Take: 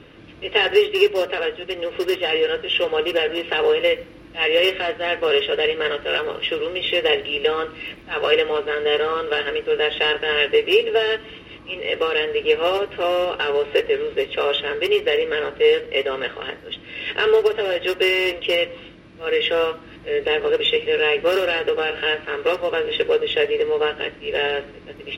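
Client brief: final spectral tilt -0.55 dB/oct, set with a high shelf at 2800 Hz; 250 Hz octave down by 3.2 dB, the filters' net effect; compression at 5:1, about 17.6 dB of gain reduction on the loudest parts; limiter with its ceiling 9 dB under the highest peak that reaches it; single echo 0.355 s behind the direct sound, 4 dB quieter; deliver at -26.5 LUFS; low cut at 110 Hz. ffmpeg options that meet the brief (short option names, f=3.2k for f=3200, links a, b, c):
-af "highpass=110,equalizer=f=250:t=o:g=-6,highshelf=f=2.8k:g=-8,acompressor=threshold=-34dB:ratio=5,alimiter=level_in=5.5dB:limit=-24dB:level=0:latency=1,volume=-5.5dB,aecho=1:1:355:0.631,volume=10.5dB"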